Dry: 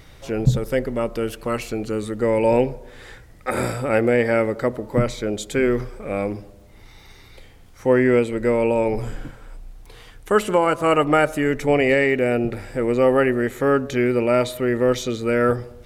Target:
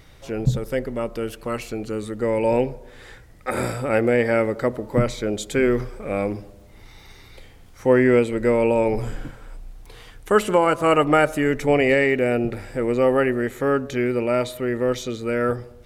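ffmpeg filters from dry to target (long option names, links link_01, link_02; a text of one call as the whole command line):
ffmpeg -i in.wav -af "dynaudnorm=framelen=600:gausssize=13:maxgain=5dB,volume=-3dB" out.wav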